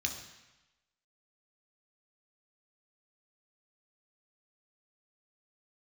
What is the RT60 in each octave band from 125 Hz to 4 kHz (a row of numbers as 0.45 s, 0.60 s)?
1.0 s, 0.95 s, 0.95 s, 1.1 s, 1.1 s, 1.0 s